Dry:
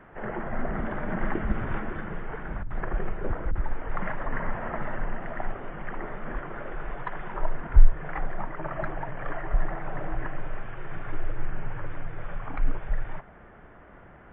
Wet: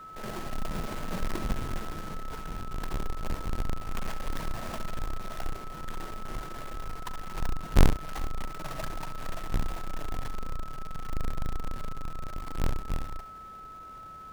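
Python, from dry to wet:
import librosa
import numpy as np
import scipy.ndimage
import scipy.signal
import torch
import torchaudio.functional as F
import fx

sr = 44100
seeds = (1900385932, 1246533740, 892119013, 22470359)

y = fx.halfwave_hold(x, sr)
y = y + 10.0 ** (-34.0 / 20.0) * np.sin(2.0 * np.pi * 1300.0 * np.arange(len(y)) / sr)
y = fx.room_early_taps(y, sr, ms=(43, 69), db=(-18.0, -11.5))
y = y * librosa.db_to_amplitude(-9.0)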